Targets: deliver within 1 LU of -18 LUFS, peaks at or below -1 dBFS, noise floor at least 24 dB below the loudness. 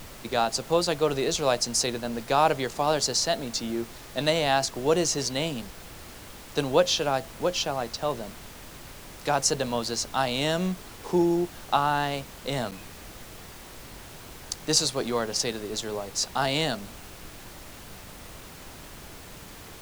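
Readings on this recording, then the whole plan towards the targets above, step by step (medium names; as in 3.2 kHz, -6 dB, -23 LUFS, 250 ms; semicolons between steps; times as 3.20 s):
dropouts 1; longest dropout 7.9 ms; noise floor -45 dBFS; noise floor target -51 dBFS; loudness -26.5 LUFS; peak level -7.0 dBFS; loudness target -18.0 LUFS
-> interpolate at 12.71 s, 7.9 ms; noise print and reduce 6 dB; trim +8.5 dB; peak limiter -1 dBFS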